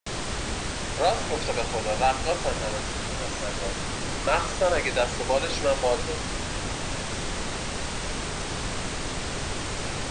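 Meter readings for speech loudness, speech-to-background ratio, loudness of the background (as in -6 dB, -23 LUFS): -27.5 LUFS, 3.5 dB, -31.0 LUFS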